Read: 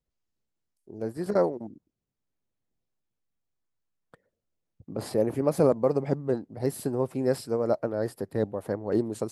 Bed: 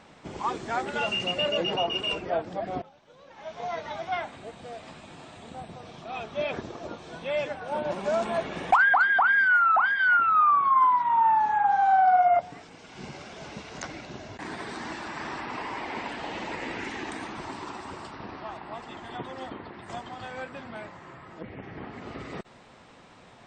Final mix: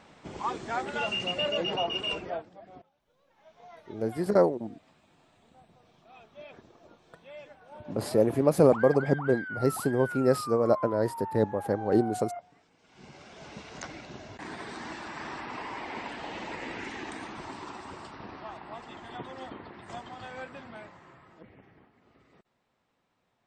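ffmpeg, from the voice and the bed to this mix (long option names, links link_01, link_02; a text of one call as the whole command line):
ffmpeg -i stem1.wav -i stem2.wav -filter_complex "[0:a]adelay=3000,volume=2dB[link_01];[1:a]volume=11.5dB,afade=type=out:start_time=2.2:duration=0.3:silence=0.177828,afade=type=in:start_time=12.77:duration=0.86:silence=0.199526,afade=type=out:start_time=20.47:duration=1.43:silence=0.1[link_02];[link_01][link_02]amix=inputs=2:normalize=0" out.wav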